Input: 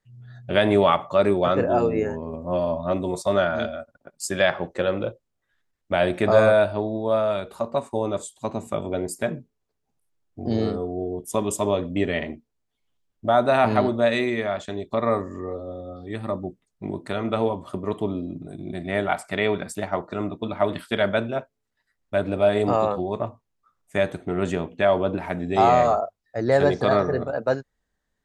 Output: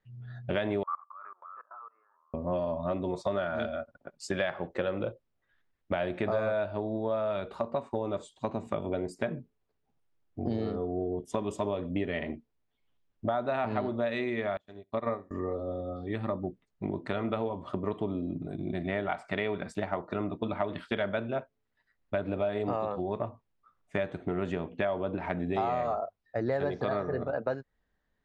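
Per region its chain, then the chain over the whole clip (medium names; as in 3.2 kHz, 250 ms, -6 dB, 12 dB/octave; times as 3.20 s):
0.83–2.34 s: companding laws mixed up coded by A + Butterworth band-pass 1.2 kHz, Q 4.3 + level held to a coarse grid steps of 23 dB
14.57–15.31 s: flutter echo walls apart 11.7 m, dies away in 0.32 s + upward expansion 2.5:1, over -42 dBFS
whole clip: low-pass 3.5 kHz 12 dB/octave; compression 5:1, threshold -28 dBFS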